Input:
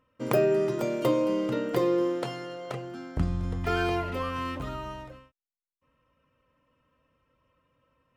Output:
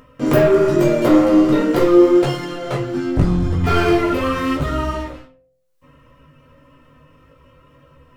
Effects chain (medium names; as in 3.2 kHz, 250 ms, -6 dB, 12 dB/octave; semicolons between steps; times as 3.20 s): waveshaping leveller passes 3; chorus voices 2, 0.82 Hz, delay 16 ms, depth 3.7 ms; de-hum 57.73 Hz, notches 14; on a send at -2 dB: reverberation RT60 0.30 s, pre-delay 7 ms; on the sum: upward compressor, threshold -35 dBFS; bass shelf 440 Hz +4.5 dB; trim +2.5 dB